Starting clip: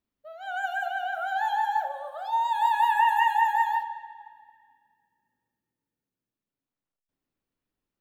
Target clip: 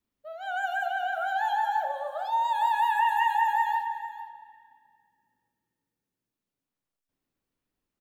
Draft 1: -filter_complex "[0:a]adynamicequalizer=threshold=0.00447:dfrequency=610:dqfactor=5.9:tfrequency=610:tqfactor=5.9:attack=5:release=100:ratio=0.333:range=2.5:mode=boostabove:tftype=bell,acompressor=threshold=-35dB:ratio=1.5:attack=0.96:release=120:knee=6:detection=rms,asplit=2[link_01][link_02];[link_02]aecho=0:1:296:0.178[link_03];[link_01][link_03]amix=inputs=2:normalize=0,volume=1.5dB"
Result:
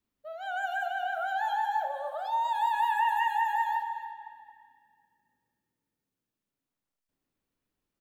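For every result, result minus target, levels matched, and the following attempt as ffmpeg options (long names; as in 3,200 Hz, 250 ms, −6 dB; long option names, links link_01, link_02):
echo 160 ms early; downward compressor: peak gain reduction +2.5 dB
-filter_complex "[0:a]adynamicequalizer=threshold=0.00447:dfrequency=610:dqfactor=5.9:tfrequency=610:tqfactor=5.9:attack=5:release=100:ratio=0.333:range=2.5:mode=boostabove:tftype=bell,acompressor=threshold=-35dB:ratio=1.5:attack=0.96:release=120:knee=6:detection=rms,asplit=2[link_01][link_02];[link_02]aecho=0:1:456:0.178[link_03];[link_01][link_03]amix=inputs=2:normalize=0,volume=1.5dB"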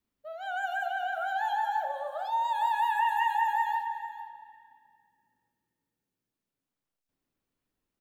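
downward compressor: peak gain reduction +2.5 dB
-filter_complex "[0:a]adynamicequalizer=threshold=0.00447:dfrequency=610:dqfactor=5.9:tfrequency=610:tqfactor=5.9:attack=5:release=100:ratio=0.333:range=2.5:mode=boostabove:tftype=bell,acompressor=threshold=-27dB:ratio=1.5:attack=0.96:release=120:knee=6:detection=rms,asplit=2[link_01][link_02];[link_02]aecho=0:1:456:0.178[link_03];[link_01][link_03]amix=inputs=2:normalize=0,volume=1.5dB"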